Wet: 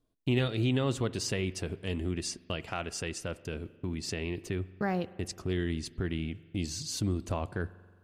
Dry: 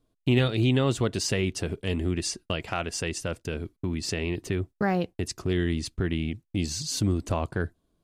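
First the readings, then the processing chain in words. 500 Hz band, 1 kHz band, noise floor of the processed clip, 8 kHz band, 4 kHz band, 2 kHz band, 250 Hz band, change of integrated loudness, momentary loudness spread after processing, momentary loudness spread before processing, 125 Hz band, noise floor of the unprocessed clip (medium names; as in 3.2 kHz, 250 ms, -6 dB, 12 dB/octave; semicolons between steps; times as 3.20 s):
-5.5 dB, -5.5 dB, -60 dBFS, -5.5 dB, -5.5 dB, -5.5 dB, -5.5 dB, -5.5 dB, 9 LU, 9 LU, -5.5 dB, -77 dBFS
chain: spring tank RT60 1.6 s, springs 43 ms, chirp 65 ms, DRR 17.5 dB; trim -5.5 dB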